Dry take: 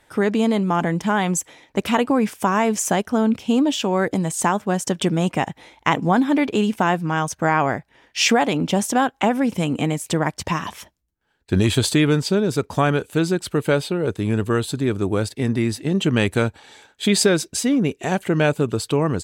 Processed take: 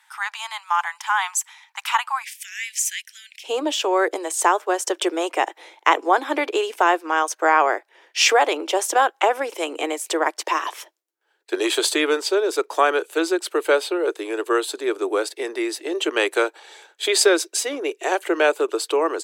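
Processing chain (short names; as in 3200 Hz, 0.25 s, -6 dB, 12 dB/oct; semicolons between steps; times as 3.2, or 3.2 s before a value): steep high-pass 830 Hz 72 dB/oct, from 2.22 s 1800 Hz, from 3.43 s 330 Hz; dynamic EQ 1200 Hz, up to +3 dB, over -35 dBFS, Q 1.9; gain +1.5 dB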